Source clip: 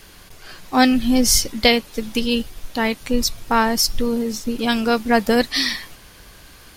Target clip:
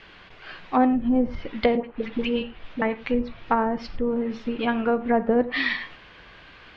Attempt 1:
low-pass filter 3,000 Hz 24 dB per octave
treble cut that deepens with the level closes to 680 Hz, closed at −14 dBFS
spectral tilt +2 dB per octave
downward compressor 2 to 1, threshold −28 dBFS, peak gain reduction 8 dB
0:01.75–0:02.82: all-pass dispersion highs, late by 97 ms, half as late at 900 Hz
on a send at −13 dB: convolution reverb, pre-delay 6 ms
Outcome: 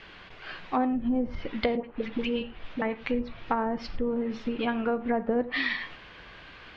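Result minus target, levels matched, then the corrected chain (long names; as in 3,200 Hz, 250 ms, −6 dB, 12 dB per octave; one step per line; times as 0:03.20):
downward compressor: peak gain reduction +8 dB
low-pass filter 3,000 Hz 24 dB per octave
treble cut that deepens with the level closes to 680 Hz, closed at −14 dBFS
spectral tilt +2 dB per octave
0:01.75–0:02.82: all-pass dispersion highs, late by 97 ms, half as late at 900 Hz
on a send at −13 dB: convolution reverb, pre-delay 6 ms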